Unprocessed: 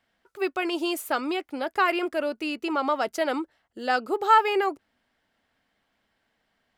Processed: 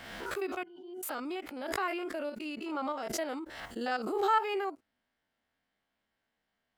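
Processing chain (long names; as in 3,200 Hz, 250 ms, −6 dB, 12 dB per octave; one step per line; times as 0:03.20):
spectrum averaged block by block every 50 ms
0:00.63–0:01.03: resonances in every octave F#, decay 0.29 s
background raised ahead of every attack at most 40 dB per second
level −8.5 dB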